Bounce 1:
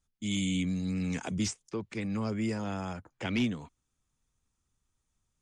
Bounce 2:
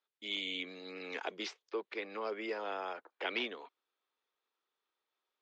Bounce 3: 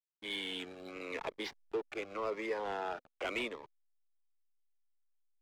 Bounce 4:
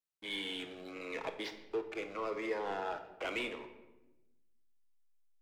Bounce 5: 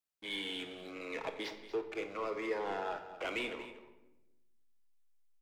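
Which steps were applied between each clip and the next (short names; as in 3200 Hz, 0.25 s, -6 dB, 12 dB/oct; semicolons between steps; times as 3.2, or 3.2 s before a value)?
elliptic band-pass 400–4100 Hz, stop band 50 dB; gain +1 dB
backlash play -42.5 dBFS; overdrive pedal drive 16 dB, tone 1600 Hz, clips at -22 dBFS; cascading phaser falling 0.88 Hz
shoebox room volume 460 m³, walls mixed, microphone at 0.59 m; gain -1 dB
echo 0.235 s -14 dB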